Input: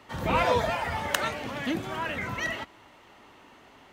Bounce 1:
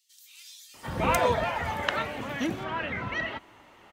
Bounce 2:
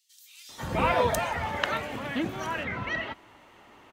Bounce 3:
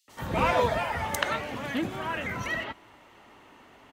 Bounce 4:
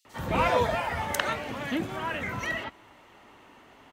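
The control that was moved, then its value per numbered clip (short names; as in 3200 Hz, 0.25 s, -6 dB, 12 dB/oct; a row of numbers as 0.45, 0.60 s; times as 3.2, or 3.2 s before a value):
bands offset in time, time: 740, 490, 80, 50 ms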